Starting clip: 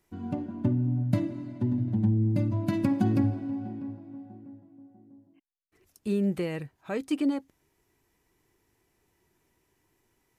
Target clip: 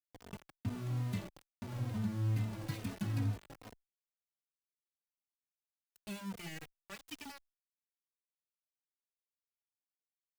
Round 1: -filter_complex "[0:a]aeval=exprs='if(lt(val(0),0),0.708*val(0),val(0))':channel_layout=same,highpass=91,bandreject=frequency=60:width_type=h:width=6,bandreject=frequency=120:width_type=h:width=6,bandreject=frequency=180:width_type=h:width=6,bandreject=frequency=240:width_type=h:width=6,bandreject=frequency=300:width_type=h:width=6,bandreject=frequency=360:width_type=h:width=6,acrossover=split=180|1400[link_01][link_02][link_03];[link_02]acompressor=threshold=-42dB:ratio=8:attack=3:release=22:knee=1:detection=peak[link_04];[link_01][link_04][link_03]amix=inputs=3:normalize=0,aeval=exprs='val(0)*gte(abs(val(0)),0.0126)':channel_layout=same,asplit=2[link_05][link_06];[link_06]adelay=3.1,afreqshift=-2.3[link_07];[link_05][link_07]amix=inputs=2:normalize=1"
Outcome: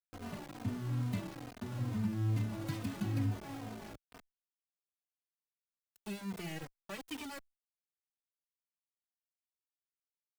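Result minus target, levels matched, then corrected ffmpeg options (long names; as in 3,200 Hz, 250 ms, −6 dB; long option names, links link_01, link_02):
downward compressor: peak gain reduction −9.5 dB
-filter_complex "[0:a]aeval=exprs='if(lt(val(0),0),0.708*val(0),val(0))':channel_layout=same,highpass=91,bandreject=frequency=60:width_type=h:width=6,bandreject=frequency=120:width_type=h:width=6,bandreject=frequency=180:width_type=h:width=6,bandreject=frequency=240:width_type=h:width=6,bandreject=frequency=300:width_type=h:width=6,bandreject=frequency=360:width_type=h:width=6,acrossover=split=180|1400[link_01][link_02][link_03];[link_02]acompressor=threshold=-53dB:ratio=8:attack=3:release=22:knee=1:detection=peak[link_04];[link_01][link_04][link_03]amix=inputs=3:normalize=0,aeval=exprs='val(0)*gte(abs(val(0)),0.0126)':channel_layout=same,asplit=2[link_05][link_06];[link_06]adelay=3.1,afreqshift=-2.3[link_07];[link_05][link_07]amix=inputs=2:normalize=1"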